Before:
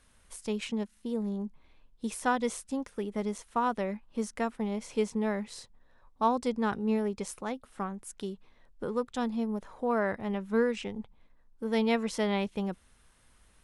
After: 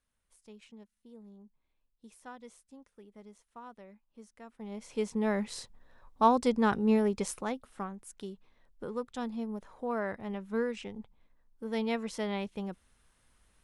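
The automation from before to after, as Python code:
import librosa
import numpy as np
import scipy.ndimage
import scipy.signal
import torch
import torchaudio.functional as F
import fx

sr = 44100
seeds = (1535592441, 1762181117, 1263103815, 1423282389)

y = fx.gain(x, sr, db=fx.line((4.42, -19.5), (4.72, -8.0), (5.42, 3.0), (7.28, 3.0), (7.98, -5.0)))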